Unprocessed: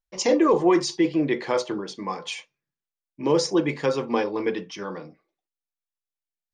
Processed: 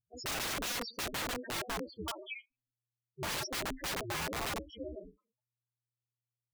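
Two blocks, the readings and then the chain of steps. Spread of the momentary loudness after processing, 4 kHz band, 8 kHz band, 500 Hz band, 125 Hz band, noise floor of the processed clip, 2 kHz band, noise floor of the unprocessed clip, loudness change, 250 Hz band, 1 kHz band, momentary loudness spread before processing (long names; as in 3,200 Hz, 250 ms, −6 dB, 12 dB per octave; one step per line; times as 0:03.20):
10 LU, −5.0 dB, −5.0 dB, −20.0 dB, −11.0 dB, below −85 dBFS, −5.0 dB, below −85 dBFS, −13.5 dB, −21.0 dB, −11.5 dB, 15 LU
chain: spectral peaks only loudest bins 2
ring modulation 120 Hz
wrap-around overflow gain 31 dB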